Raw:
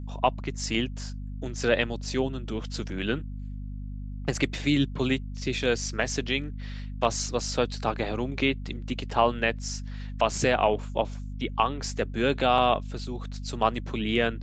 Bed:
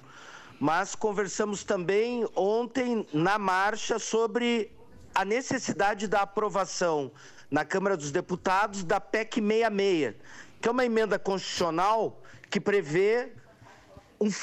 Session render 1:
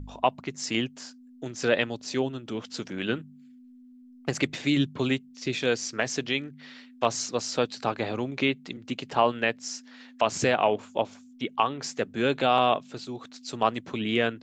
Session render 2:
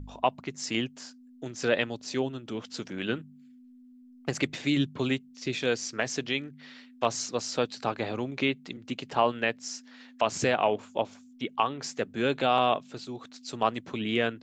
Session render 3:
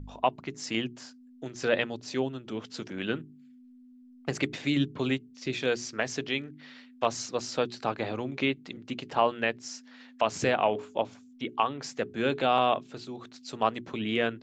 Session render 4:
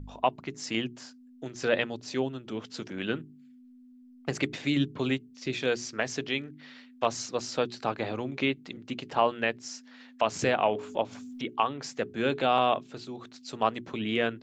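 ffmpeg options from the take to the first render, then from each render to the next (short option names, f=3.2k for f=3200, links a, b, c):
-af "bandreject=f=50:t=h:w=4,bandreject=f=100:t=h:w=4,bandreject=f=150:t=h:w=4,bandreject=f=200:t=h:w=4"
-af "volume=-2dB"
-af "highshelf=f=6.8k:g=-7.5,bandreject=f=60:t=h:w=6,bandreject=f=120:t=h:w=6,bandreject=f=180:t=h:w=6,bandreject=f=240:t=h:w=6,bandreject=f=300:t=h:w=6,bandreject=f=360:t=h:w=6,bandreject=f=420:t=h:w=6"
-filter_complex "[0:a]asettb=1/sr,asplit=3[a][b][c];[a]atrim=end=10.394[d];[b]atrim=start=10.39:end=11.44,asetpts=PTS-STARTPTS,afade=t=in:d=0.004:c=qsin,afade=t=out:st=1.046:d=0.004:c=qsin,acompressor=mode=upward:threshold=-32dB:ratio=2.5:attack=3.2:release=140:knee=2.83:detection=peak[e];[c]atrim=start=11.436[f];[d][e]acrossfade=d=0.004:c1=hsin:c2=qsin[g];[g][f]acrossfade=d=0.004:c1=qsin:c2=hsin"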